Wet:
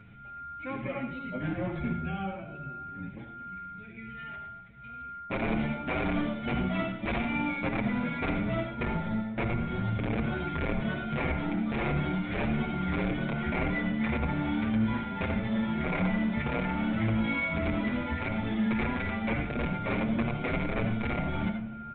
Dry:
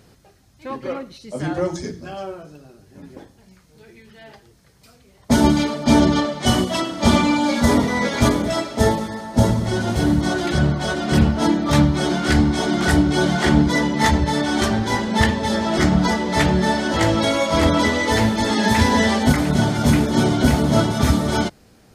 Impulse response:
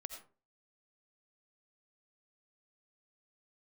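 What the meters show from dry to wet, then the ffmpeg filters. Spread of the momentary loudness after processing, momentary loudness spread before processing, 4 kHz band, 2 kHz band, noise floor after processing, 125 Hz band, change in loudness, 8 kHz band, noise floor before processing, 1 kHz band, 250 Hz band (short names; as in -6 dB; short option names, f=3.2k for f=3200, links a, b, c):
12 LU, 9 LU, -19.5 dB, -10.0 dB, -44 dBFS, -12.0 dB, -12.5 dB, under -40 dB, -53 dBFS, -13.0 dB, -11.5 dB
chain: -filter_complex "[0:a]lowshelf=f=280:t=q:w=1.5:g=9.5,bandreject=f=50:t=h:w=6,bandreject=f=100:t=h:w=6,bandreject=f=150:t=h:w=6,bandreject=f=200:t=h:w=6,aresample=11025,aeval=exprs='(mod(1.26*val(0)+1,2)-1)/1.26':c=same,aresample=44100,equalizer=f=2.3k:t=o:w=0.35:g=14,areverse,acompressor=threshold=-18dB:ratio=6,areverse,aeval=exprs='val(0)+0.01*sin(2*PI*1400*n/s)':c=same,acrossover=split=2600[a][b];[b]acompressor=threshold=-40dB:ratio=4:attack=1:release=60[c];[a][c]amix=inputs=2:normalize=0,asoftclip=type=hard:threshold=-17.5dB,asplit=2[d][e];[e]adelay=242,lowpass=f=1.1k:p=1,volume=-13.5dB,asplit=2[f][g];[g]adelay=242,lowpass=f=1.1k:p=1,volume=0.49,asplit=2[h][i];[i]adelay=242,lowpass=f=1.1k:p=1,volume=0.49,asplit=2[j][k];[k]adelay=242,lowpass=f=1.1k:p=1,volume=0.49,asplit=2[l][m];[m]adelay=242,lowpass=f=1.1k:p=1,volume=0.49[n];[d][f][h][j][l][n]amix=inputs=6:normalize=0[o];[1:a]atrim=start_sample=2205,asetrate=48510,aresample=44100[p];[o][p]afir=irnorm=-1:irlink=0,aresample=8000,aresample=44100,asplit=2[q][r];[r]adelay=7.1,afreqshift=1.3[s];[q][s]amix=inputs=2:normalize=1"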